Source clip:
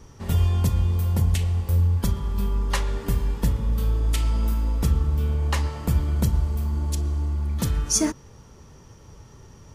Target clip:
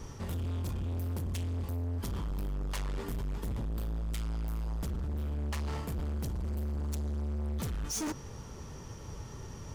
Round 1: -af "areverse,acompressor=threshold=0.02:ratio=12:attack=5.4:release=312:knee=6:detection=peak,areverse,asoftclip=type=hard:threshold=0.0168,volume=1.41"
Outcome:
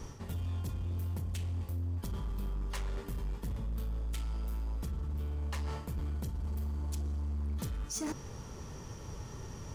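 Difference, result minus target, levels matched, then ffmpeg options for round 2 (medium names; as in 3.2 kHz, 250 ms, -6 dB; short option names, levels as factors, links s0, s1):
compression: peak gain reduction +7 dB
-af "areverse,acompressor=threshold=0.0473:ratio=12:attack=5.4:release=312:knee=6:detection=peak,areverse,asoftclip=type=hard:threshold=0.0168,volume=1.41"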